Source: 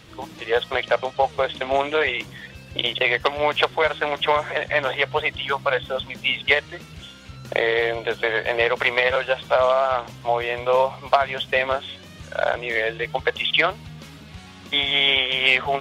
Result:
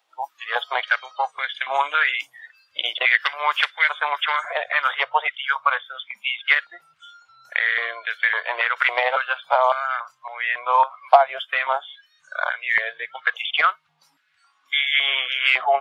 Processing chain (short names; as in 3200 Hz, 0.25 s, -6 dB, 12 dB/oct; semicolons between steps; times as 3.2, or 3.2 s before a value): spectral noise reduction 20 dB; high shelf 4700 Hz +4.5 dB, from 5.03 s -5 dB; stepped high-pass 3.6 Hz 770–1800 Hz; gain -3 dB